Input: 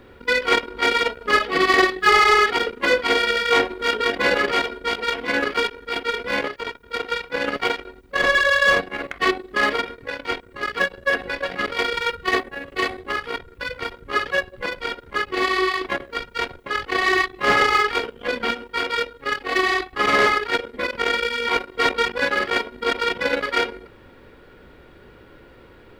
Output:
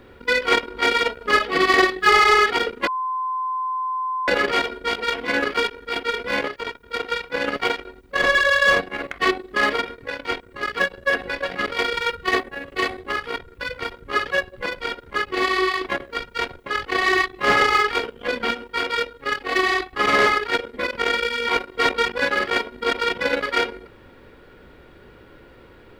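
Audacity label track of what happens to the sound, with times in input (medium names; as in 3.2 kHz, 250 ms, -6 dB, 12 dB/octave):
2.870000	4.280000	bleep 1.03 kHz -22 dBFS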